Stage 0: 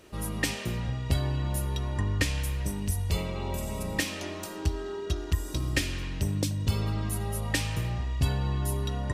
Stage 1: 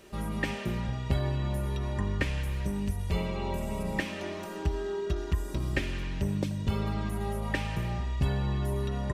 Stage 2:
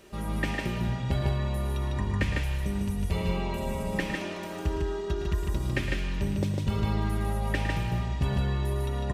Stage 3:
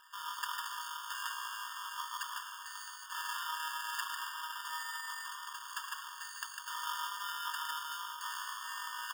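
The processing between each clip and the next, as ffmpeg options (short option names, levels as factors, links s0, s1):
-filter_complex "[0:a]acrossover=split=2700[s0][s1];[s1]acompressor=threshold=0.00316:ratio=4:attack=1:release=60[s2];[s0][s2]amix=inputs=2:normalize=0,aecho=1:1:5.1:0.42"
-af "aecho=1:1:110.8|151.6:0.316|0.708"
-af "acrusher=samples=20:mix=1:aa=0.000001,afftfilt=real='re*eq(mod(floor(b*sr/1024/910),2),1)':imag='im*eq(mod(floor(b*sr/1024/910),2),1)':win_size=1024:overlap=0.75,volume=1.26"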